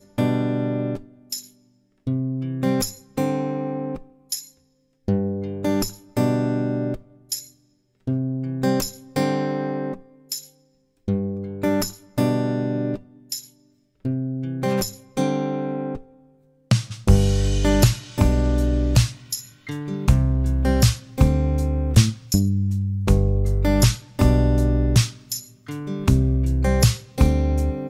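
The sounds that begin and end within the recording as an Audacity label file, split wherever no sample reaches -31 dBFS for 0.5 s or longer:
2.070000	4.410000	sound
5.080000	7.400000	sound
8.070000	10.390000	sound
11.080000	13.400000	sound
14.050000	15.980000	sound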